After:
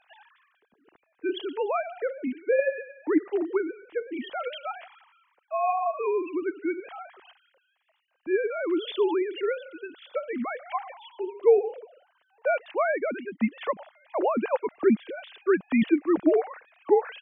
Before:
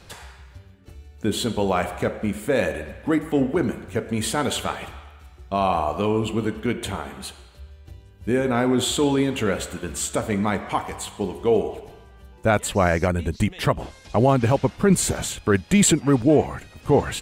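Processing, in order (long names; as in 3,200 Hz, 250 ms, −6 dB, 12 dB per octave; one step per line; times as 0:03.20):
three sine waves on the formant tracks
level −5 dB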